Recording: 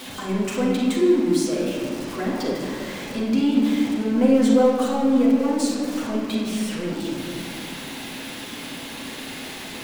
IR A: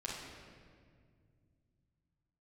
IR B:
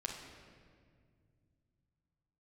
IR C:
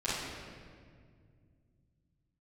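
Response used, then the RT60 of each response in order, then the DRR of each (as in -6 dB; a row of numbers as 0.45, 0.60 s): A; 2.0, 2.0, 2.0 s; -5.0, 0.0, -12.0 dB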